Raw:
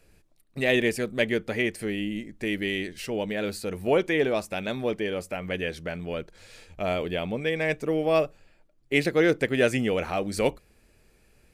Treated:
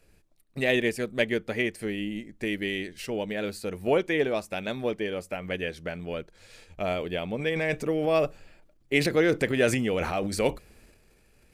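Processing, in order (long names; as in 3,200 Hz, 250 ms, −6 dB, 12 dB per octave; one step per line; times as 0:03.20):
transient designer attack +2 dB, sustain −2 dB, from 0:07.38 sustain +8 dB
level −2 dB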